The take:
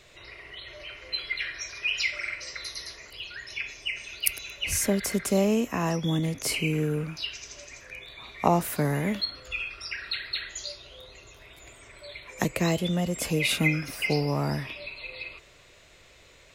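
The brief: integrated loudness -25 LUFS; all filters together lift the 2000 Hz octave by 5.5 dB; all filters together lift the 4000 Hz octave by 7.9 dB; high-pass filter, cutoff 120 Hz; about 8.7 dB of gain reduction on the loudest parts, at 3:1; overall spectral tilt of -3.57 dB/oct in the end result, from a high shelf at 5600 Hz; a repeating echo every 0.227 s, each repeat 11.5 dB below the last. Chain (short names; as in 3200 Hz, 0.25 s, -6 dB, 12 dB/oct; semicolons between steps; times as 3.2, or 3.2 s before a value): HPF 120 Hz; bell 2000 Hz +3.5 dB; bell 4000 Hz +7.5 dB; high shelf 5600 Hz +3.5 dB; compressor 3:1, threshold -27 dBFS; feedback echo 0.227 s, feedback 27%, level -11.5 dB; gain +4.5 dB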